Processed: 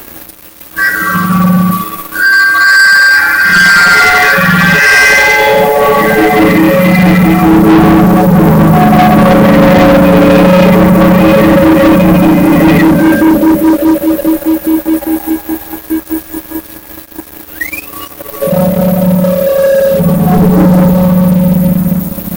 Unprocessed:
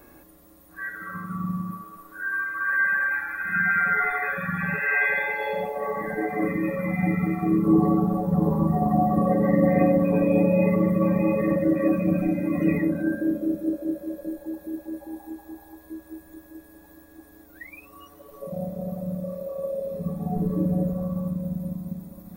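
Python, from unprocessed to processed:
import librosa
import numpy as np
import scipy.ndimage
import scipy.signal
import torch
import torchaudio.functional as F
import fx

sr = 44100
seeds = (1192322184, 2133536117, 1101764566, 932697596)

y = fx.high_shelf(x, sr, hz=6400.0, db=9.0)
y = fx.leveller(y, sr, passes=5)
y = y * 10.0 ** (6.5 / 20.0)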